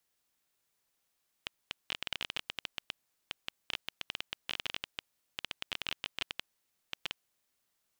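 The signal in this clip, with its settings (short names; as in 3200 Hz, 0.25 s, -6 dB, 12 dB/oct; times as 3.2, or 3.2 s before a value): random clicks 12/s -17 dBFS 5.98 s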